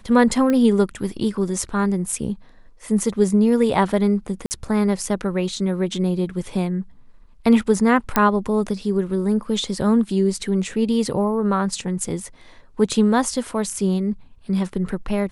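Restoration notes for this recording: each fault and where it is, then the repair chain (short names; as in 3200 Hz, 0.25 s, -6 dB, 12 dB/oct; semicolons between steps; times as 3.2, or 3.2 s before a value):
0.5 pop -11 dBFS
4.46–4.51 gap 49 ms
8.16 pop -2 dBFS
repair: de-click; interpolate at 4.46, 49 ms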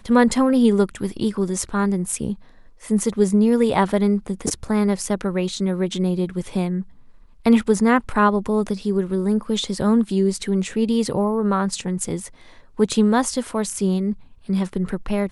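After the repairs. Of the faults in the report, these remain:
none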